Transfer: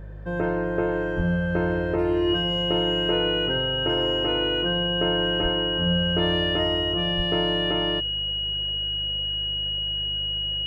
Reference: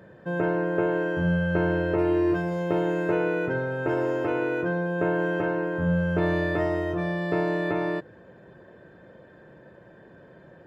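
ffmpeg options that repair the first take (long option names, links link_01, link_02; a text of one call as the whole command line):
ffmpeg -i in.wav -filter_complex "[0:a]bandreject=frequency=51:width_type=h:width=4,bandreject=frequency=102:width_type=h:width=4,bandreject=frequency=153:width_type=h:width=4,bandreject=frequency=2900:width=30,asplit=3[link_01][link_02][link_03];[link_01]afade=type=out:start_time=1.16:duration=0.02[link_04];[link_02]highpass=frequency=140:width=0.5412,highpass=frequency=140:width=1.3066,afade=type=in:start_time=1.16:duration=0.02,afade=type=out:start_time=1.28:duration=0.02[link_05];[link_03]afade=type=in:start_time=1.28:duration=0.02[link_06];[link_04][link_05][link_06]amix=inputs=3:normalize=0,asplit=3[link_07][link_08][link_09];[link_07]afade=type=out:start_time=5.42:duration=0.02[link_10];[link_08]highpass=frequency=140:width=0.5412,highpass=frequency=140:width=1.3066,afade=type=in:start_time=5.42:duration=0.02,afade=type=out:start_time=5.54:duration=0.02[link_11];[link_09]afade=type=in:start_time=5.54:duration=0.02[link_12];[link_10][link_11][link_12]amix=inputs=3:normalize=0,asplit=3[link_13][link_14][link_15];[link_13]afade=type=out:start_time=7.16:duration=0.02[link_16];[link_14]highpass=frequency=140:width=0.5412,highpass=frequency=140:width=1.3066,afade=type=in:start_time=7.16:duration=0.02,afade=type=out:start_time=7.28:duration=0.02[link_17];[link_15]afade=type=in:start_time=7.28:duration=0.02[link_18];[link_16][link_17][link_18]amix=inputs=3:normalize=0" out.wav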